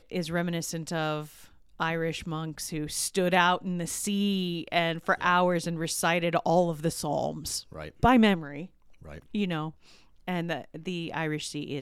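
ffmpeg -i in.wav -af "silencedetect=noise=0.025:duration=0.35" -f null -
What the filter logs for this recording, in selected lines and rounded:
silence_start: 1.22
silence_end: 1.80 | silence_duration: 0.58
silence_start: 8.63
silence_end: 9.10 | silence_duration: 0.48
silence_start: 9.69
silence_end: 10.28 | silence_duration: 0.58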